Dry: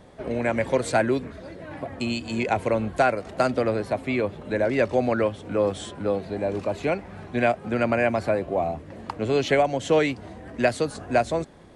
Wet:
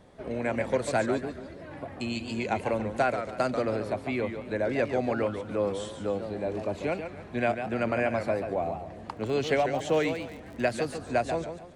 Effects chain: 9.16–11.01 s: crackle 44 per s -32 dBFS; modulated delay 142 ms, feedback 34%, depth 165 cents, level -8 dB; trim -5.5 dB

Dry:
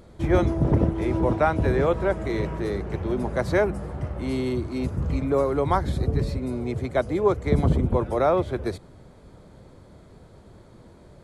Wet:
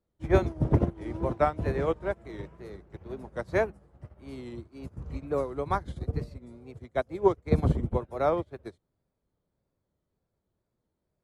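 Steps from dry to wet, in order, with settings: wow and flutter 100 cents; upward expansion 2.5:1, over -37 dBFS

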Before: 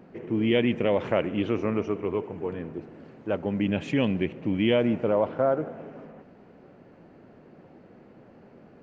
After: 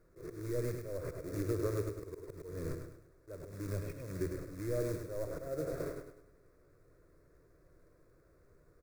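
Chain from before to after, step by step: one-bit delta coder 32 kbps, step -37.5 dBFS; gate -38 dBFS, range -30 dB; tilt EQ -3.5 dB/octave; short-mantissa float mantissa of 2-bit; compression 16:1, threshold -31 dBFS, peak gain reduction 20.5 dB; slow attack 286 ms; static phaser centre 820 Hz, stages 6; feedback delay 102 ms, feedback 38%, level -6.5 dB; trim +5 dB

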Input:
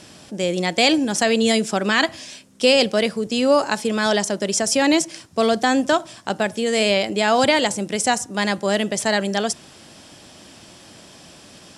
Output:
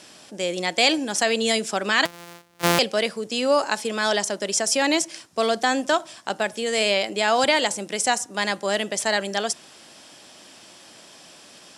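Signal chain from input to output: 2.05–2.79 s: sorted samples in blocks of 256 samples; high-pass 480 Hz 6 dB/octave; trim -1 dB

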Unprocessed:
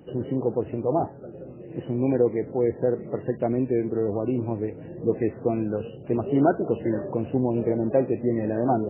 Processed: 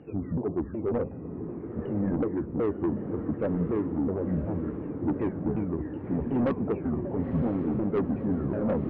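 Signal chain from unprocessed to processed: sawtooth pitch modulation -9.5 st, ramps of 371 ms; low-pass 2.6 kHz; saturation -21.5 dBFS, distortion -11 dB; on a send: echo that smears into a reverb 999 ms, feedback 52%, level -8 dB

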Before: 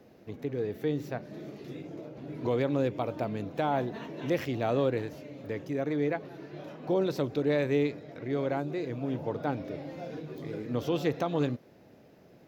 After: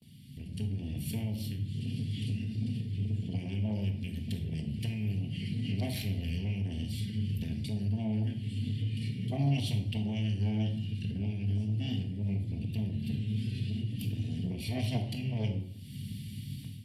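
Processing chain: speed mistake 45 rpm record played at 33 rpm; Chebyshev band-stop 250–2600 Hz, order 4; sine folder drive 6 dB, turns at -20.5 dBFS; gate with hold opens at -43 dBFS; fifteen-band graphic EQ 100 Hz +11 dB, 250 Hz -11 dB, 1.6 kHz +5 dB; compression 4:1, threshold -38 dBFS, peak gain reduction 18 dB; saturation -32 dBFS, distortion -20 dB; reverberation RT60 0.60 s, pre-delay 4 ms, DRR 3 dB; level rider gain up to 12 dB; bass shelf 260 Hz -4 dB; comb of notches 1.3 kHz

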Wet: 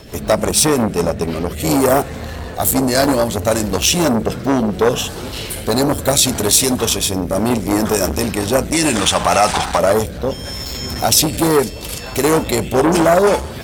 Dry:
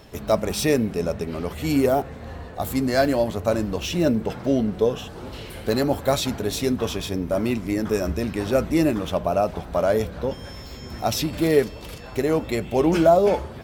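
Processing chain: dynamic bell 8.9 kHz, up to +8 dB, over -52 dBFS, Q 1.4; rotary cabinet horn 6 Hz, later 0.7 Hz, at 0.66 s; treble shelf 4 kHz +5.5 dB, from 1.60 s +11.5 dB; hard clipper -8 dBFS, distortion -46 dB; 8.72–9.78 s: time-frequency box 730–10000 Hz +12 dB; loudness maximiser +11.5 dB; transformer saturation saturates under 760 Hz

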